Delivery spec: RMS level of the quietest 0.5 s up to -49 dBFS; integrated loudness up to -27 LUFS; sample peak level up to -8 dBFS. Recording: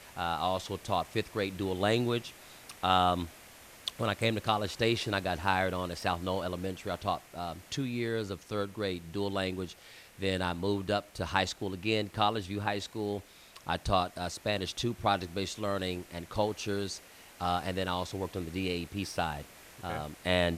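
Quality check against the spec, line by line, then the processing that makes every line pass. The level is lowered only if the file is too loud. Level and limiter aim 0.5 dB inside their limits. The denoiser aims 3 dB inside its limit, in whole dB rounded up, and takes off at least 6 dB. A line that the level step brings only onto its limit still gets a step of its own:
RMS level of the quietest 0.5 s -53 dBFS: OK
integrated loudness -33.0 LUFS: OK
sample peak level -11.0 dBFS: OK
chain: none

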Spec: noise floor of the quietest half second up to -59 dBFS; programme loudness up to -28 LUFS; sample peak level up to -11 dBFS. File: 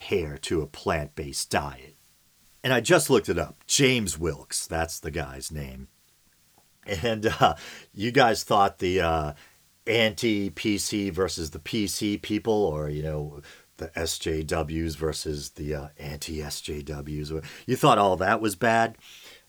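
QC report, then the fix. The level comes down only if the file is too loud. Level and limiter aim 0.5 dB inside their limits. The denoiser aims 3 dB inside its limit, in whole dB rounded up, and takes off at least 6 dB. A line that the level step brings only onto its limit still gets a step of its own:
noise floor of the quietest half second -62 dBFS: OK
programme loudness -26.0 LUFS: fail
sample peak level -4.5 dBFS: fail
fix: gain -2.5 dB; limiter -11.5 dBFS

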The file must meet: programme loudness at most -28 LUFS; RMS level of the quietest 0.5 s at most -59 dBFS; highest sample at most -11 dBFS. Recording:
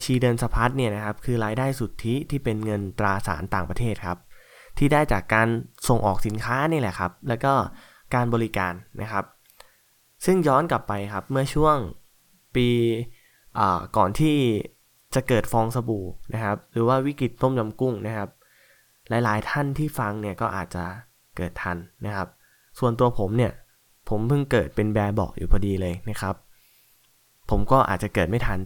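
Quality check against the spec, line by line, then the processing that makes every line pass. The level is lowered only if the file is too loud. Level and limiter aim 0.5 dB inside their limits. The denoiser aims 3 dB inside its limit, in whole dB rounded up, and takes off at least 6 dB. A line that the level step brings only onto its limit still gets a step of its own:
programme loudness -24.5 LUFS: fail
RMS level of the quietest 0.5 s -62 dBFS: OK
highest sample -4.5 dBFS: fail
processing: gain -4 dB; limiter -11.5 dBFS

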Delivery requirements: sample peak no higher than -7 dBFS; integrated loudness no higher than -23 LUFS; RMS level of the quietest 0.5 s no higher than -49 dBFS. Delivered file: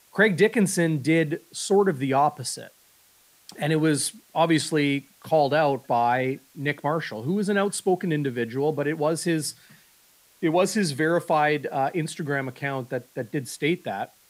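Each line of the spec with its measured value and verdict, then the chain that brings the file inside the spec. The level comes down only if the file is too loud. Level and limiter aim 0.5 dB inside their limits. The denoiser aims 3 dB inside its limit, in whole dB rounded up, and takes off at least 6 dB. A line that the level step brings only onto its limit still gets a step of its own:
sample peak -5.5 dBFS: fail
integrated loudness -24.5 LUFS: OK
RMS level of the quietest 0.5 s -59 dBFS: OK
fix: limiter -7.5 dBFS

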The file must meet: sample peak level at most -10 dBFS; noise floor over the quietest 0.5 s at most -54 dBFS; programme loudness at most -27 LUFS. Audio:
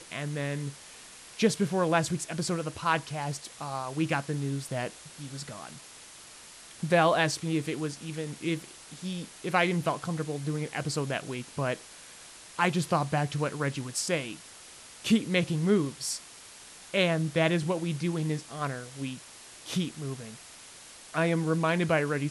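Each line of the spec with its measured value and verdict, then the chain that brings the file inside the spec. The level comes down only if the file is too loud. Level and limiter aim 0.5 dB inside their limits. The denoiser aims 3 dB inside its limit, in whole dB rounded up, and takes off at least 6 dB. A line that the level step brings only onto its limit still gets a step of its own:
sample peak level -11.0 dBFS: OK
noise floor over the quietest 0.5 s -49 dBFS: fail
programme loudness -30.0 LUFS: OK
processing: denoiser 8 dB, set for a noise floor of -49 dBFS

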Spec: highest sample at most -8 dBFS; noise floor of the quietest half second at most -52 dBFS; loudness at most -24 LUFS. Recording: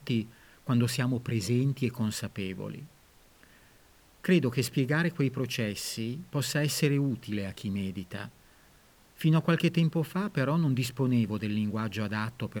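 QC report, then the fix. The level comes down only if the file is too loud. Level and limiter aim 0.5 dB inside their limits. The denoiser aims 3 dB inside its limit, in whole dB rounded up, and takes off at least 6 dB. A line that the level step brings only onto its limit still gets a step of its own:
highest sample -13.5 dBFS: OK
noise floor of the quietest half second -60 dBFS: OK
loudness -29.5 LUFS: OK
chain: none

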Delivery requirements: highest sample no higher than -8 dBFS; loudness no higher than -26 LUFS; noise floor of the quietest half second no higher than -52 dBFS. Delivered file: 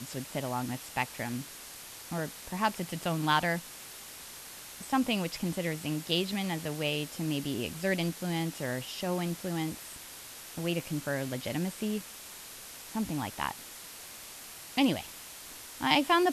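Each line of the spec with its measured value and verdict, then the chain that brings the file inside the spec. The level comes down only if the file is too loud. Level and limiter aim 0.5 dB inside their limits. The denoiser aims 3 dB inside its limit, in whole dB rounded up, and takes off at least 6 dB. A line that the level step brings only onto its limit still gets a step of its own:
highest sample -11.0 dBFS: OK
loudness -32.5 LUFS: OK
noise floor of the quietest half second -47 dBFS: fail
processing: denoiser 8 dB, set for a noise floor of -47 dBFS

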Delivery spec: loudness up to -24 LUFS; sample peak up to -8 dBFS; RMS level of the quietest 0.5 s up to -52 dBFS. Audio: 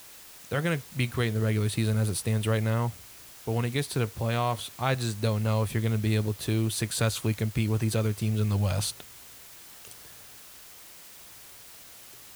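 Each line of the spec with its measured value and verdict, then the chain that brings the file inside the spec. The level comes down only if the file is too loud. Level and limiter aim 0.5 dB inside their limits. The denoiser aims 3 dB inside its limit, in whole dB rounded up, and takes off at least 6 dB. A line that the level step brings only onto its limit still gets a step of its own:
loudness -28.0 LUFS: OK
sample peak -12.0 dBFS: OK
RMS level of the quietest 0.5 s -48 dBFS: fail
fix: denoiser 7 dB, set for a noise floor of -48 dBFS

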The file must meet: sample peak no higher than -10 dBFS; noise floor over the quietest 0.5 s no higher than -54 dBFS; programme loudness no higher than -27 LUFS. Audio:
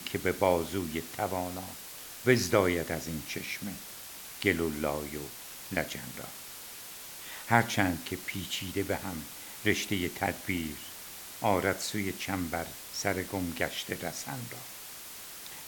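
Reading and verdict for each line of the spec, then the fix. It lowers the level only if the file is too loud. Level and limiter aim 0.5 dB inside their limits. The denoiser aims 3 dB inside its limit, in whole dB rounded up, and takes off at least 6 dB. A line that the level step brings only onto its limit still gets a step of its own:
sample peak -6.0 dBFS: fail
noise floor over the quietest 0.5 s -45 dBFS: fail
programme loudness -32.5 LUFS: OK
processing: denoiser 12 dB, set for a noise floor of -45 dBFS; limiter -10.5 dBFS

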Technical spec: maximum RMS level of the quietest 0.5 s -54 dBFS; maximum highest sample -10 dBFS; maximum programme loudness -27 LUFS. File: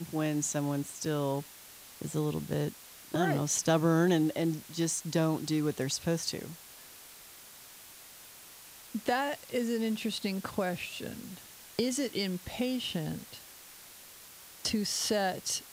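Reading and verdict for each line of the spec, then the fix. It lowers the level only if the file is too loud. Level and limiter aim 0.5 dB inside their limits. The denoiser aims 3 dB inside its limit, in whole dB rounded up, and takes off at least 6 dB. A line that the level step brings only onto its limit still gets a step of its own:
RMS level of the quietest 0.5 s -52 dBFS: fail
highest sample -16.5 dBFS: OK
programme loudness -32.0 LUFS: OK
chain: denoiser 6 dB, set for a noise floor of -52 dBFS

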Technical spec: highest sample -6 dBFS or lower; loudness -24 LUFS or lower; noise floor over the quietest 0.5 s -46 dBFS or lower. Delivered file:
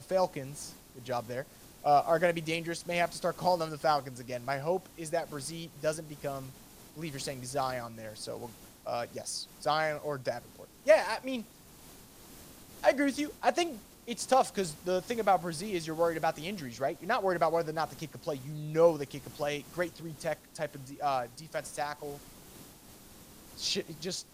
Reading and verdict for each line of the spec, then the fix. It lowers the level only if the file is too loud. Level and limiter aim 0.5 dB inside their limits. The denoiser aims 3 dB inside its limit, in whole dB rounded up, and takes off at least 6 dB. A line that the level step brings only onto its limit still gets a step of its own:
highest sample -10.5 dBFS: OK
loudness -32.5 LUFS: OK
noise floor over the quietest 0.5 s -54 dBFS: OK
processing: none

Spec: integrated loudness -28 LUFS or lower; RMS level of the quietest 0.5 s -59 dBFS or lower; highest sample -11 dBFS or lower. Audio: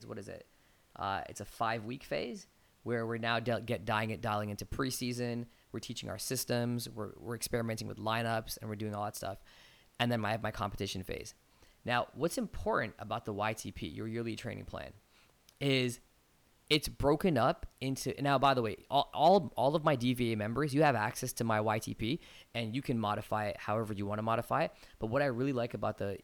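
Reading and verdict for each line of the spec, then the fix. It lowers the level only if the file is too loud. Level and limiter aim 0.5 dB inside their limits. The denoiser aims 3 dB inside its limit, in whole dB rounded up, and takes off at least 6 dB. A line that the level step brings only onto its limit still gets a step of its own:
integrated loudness -34.5 LUFS: OK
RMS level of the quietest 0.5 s -68 dBFS: OK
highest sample -16.5 dBFS: OK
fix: none

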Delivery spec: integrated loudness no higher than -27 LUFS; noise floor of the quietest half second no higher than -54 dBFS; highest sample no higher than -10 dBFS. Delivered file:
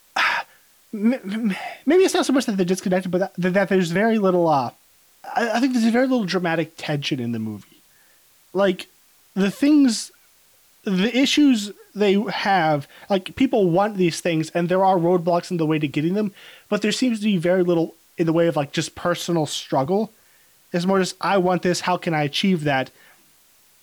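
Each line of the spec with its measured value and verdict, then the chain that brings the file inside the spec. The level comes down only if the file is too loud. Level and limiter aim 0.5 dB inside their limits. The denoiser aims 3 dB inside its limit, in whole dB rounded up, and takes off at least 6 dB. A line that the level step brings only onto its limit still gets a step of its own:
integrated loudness -21.0 LUFS: fail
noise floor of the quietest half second -56 dBFS: OK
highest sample -9.0 dBFS: fail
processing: gain -6.5 dB

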